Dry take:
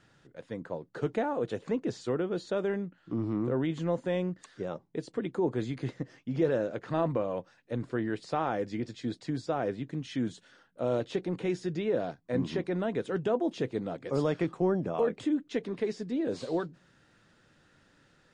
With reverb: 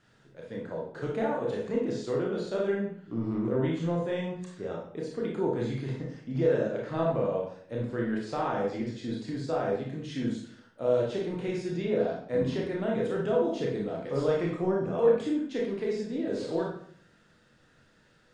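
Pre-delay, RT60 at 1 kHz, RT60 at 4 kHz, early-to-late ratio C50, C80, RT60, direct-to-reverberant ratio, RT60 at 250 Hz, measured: 24 ms, 0.55 s, 0.50 s, 2.5 dB, 7.5 dB, 0.60 s, -2.5 dB, 0.70 s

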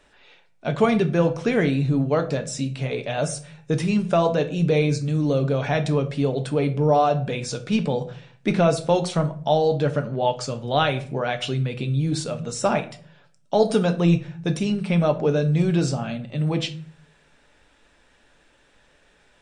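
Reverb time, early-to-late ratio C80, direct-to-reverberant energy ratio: 0.50 s, 18.5 dB, 7.0 dB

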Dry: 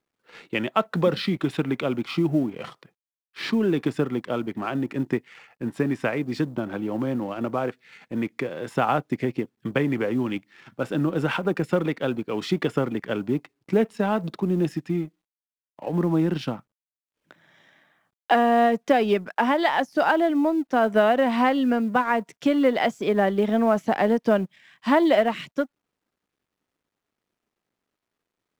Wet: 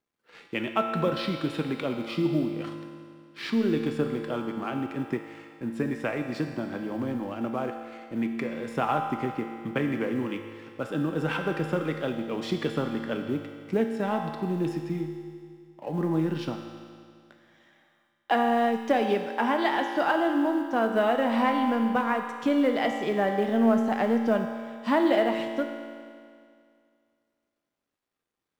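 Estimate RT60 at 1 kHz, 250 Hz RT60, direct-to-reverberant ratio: 2.2 s, 2.2 s, 3.5 dB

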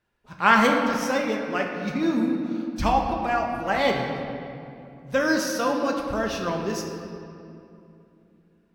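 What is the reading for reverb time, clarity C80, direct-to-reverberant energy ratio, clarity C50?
2.8 s, 4.5 dB, 0.5 dB, 3.5 dB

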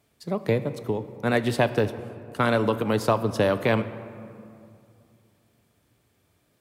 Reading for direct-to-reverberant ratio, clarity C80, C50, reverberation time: 11.5 dB, 14.0 dB, 13.0 dB, 2.5 s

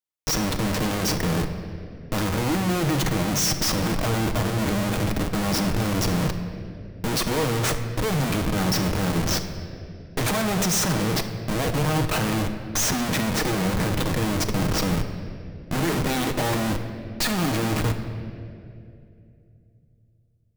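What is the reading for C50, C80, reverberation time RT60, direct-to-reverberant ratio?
8.5 dB, 9.5 dB, 2.6 s, 5.5 dB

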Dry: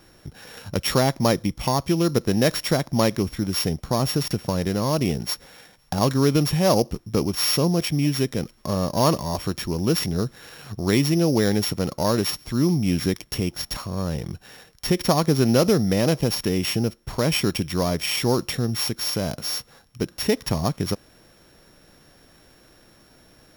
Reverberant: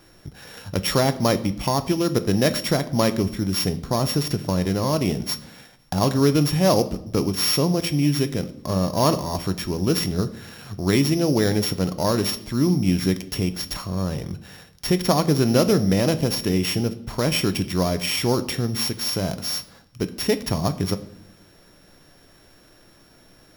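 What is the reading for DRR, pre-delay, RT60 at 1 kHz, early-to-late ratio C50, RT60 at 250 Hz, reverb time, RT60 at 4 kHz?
10.5 dB, 3 ms, 0.65 s, 15.5 dB, 1.1 s, 0.75 s, 0.60 s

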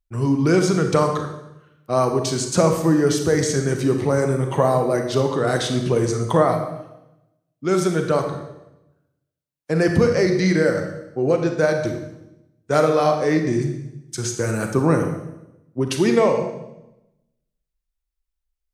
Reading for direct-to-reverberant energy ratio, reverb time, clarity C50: 4.5 dB, 0.90 s, 6.0 dB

